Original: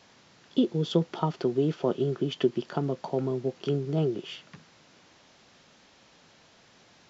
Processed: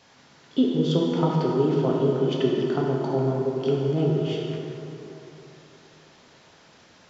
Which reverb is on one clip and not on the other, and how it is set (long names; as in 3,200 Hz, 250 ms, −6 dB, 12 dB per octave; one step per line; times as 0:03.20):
dense smooth reverb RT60 3.2 s, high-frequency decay 0.5×, DRR −3 dB